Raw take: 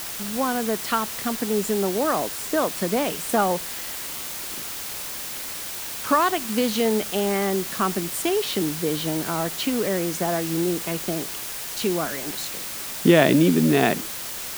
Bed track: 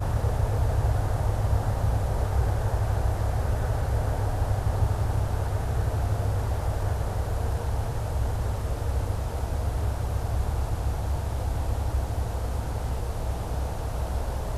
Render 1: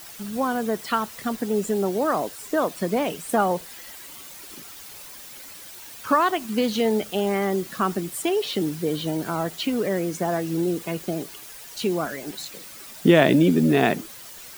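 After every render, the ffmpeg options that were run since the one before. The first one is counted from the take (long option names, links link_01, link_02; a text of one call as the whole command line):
ffmpeg -i in.wav -af "afftdn=noise_reduction=11:noise_floor=-33" out.wav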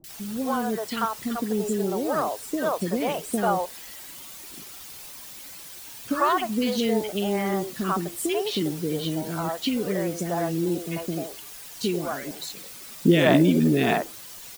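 ffmpeg -i in.wav -filter_complex "[0:a]acrossover=split=470|1600[link_01][link_02][link_03];[link_03]adelay=40[link_04];[link_02]adelay=90[link_05];[link_01][link_05][link_04]amix=inputs=3:normalize=0" out.wav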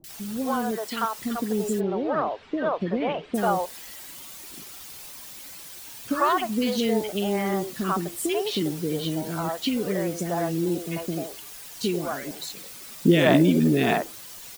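ffmpeg -i in.wav -filter_complex "[0:a]asettb=1/sr,asplit=3[link_01][link_02][link_03];[link_01]atrim=end=0.714[link_04];[link_02]atrim=start=0.71:end=1.22,asetpts=PTS-STARTPTS,afade=type=in:duration=0.004:curve=qsin,afade=type=out:start_time=0.506:duration=0.004:curve=qsin,equalizer=frequency=81:width=0.75:gain=-11[link_05];[link_03]atrim=start=1.216[link_06];[link_04][link_05]acrossfade=duration=0.004:curve1=hsin:curve2=qsin[link_07];[link_07][link_06]acrossfade=duration=0.004:curve1=qsin:curve2=hsin,asplit=3[link_08][link_09][link_10];[link_08]afade=type=out:start_time=1.79:duration=0.02[link_11];[link_09]lowpass=frequency=3300:width=0.5412,lowpass=frequency=3300:width=1.3066,afade=type=in:start_time=1.79:duration=0.02,afade=type=out:start_time=3.34:duration=0.02[link_12];[link_10]afade=type=in:start_time=3.34:duration=0.02[link_13];[link_11][link_12][link_13]amix=inputs=3:normalize=0" out.wav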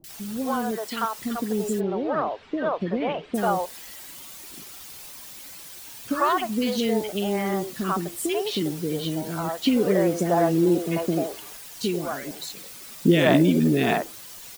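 ffmpeg -i in.wav -filter_complex "[0:a]asettb=1/sr,asplit=3[link_01][link_02][link_03];[link_01]atrim=end=9.654[link_04];[link_02]atrim=start=9.65:end=11.57,asetpts=PTS-STARTPTS,afade=type=in:duration=0.004:curve=qsin,afade=type=out:start_time=1.916:duration=0.004:curve=qsin,equalizer=frequency=530:width=0.35:gain=7[link_05];[link_03]atrim=start=11.566[link_06];[link_04][link_05]acrossfade=duration=0.004:curve1=hsin:curve2=qsin[link_07];[link_07][link_06]acrossfade=duration=0.004:curve1=qsin:curve2=hsin" out.wav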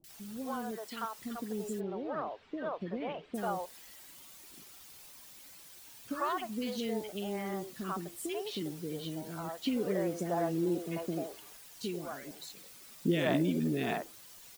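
ffmpeg -i in.wav -af "volume=-11.5dB" out.wav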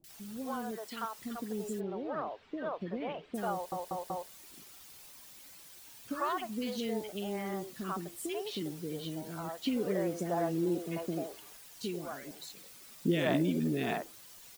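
ffmpeg -i in.wav -filter_complex "[0:a]asplit=5[link_01][link_02][link_03][link_04][link_05];[link_01]atrim=end=3.722[link_06];[link_02]atrim=start=3.528:end=3.722[link_07];[link_03]atrim=start=3.528:end=3.722[link_08];[link_04]atrim=start=3.528:end=3.722[link_09];[link_05]atrim=start=4.288[link_10];[link_06][link_07]acrossfade=duration=0.004:curve1=hsin:curve2=hsin[link_11];[link_11][link_08]acrossfade=duration=0.004:curve1=hsin:curve2=hsin[link_12];[link_12][link_09]acrossfade=duration=0.004:curve1=hsin:curve2=hsin[link_13];[link_13][link_10]acrossfade=duration=0.004:curve1=hsin:curve2=hsin" out.wav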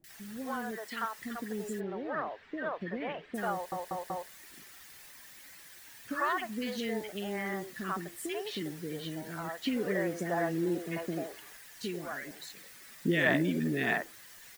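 ffmpeg -i in.wav -af "equalizer=frequency=1800:width=2.5:gain=12.5" out.wav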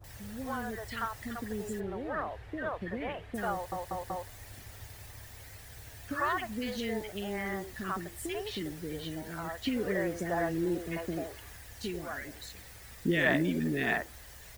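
ffmpeg -i in.wav -i bed.wav -filter_complex "[1:a]volume=-25dB[link_01];[0:a][link_01]amix=inputs=2:normalize=0" out.wav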